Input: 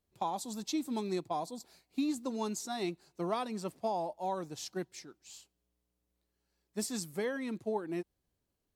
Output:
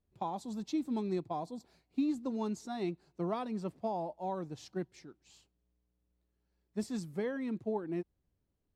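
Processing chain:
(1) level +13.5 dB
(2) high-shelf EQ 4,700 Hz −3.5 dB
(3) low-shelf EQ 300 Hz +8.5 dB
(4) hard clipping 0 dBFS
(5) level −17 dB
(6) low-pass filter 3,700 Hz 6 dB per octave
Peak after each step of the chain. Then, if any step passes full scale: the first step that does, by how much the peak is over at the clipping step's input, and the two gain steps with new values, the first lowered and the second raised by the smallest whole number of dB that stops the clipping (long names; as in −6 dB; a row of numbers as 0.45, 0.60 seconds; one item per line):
−8.0, −8.5, −6.0, −6.0, −23.0, −23.0 dBFS
no step passes full scale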